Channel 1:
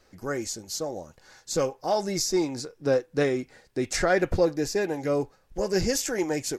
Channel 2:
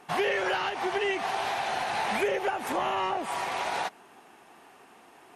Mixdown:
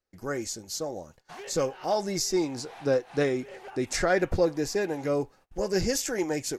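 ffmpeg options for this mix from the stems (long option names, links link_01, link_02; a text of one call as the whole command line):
ffmpeg -i stem1.wav -i stem2.wav -filter_complex "[0:a]volume=-1.5dB,asplit=2[link_01][link_02];[1:a]aeval=exprs='0.0944*(abs(mod(val(0)/0.0944+3,4)-2)-1)':channel_layout=same,adelay=1200,volume=-15dB[link_03];[link_02]apad=whole_len=289258[link_04];[link_03][link_04]sidechaincompress=threshold=-42dB:ratio=5:attack=16:release=118[link_05];[link_01][link_05]amix=inputs=2:normalize=0,agate=range=-25dB:threshold=-53dB:ratio=16:detection=peak" out.wav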